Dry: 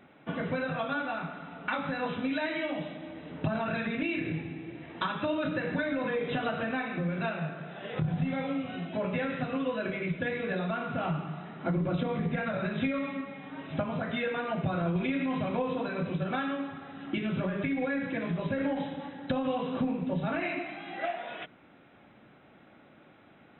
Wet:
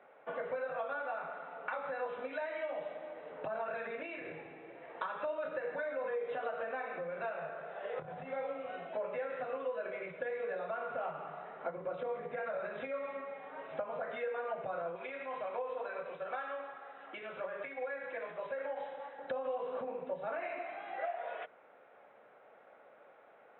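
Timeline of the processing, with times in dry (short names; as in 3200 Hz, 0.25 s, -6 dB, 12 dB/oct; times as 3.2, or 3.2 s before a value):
14.95–19.18 low shelf 450 Hz -11 dB
whole clip: resonant low shelf 390 Hz -6 dB, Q 3; compressor 3:1, threshold -34 dBFS; three-band isolator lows -17 dB, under 300 Hz, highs -17 dB, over 2100 Hz; gain -1 dB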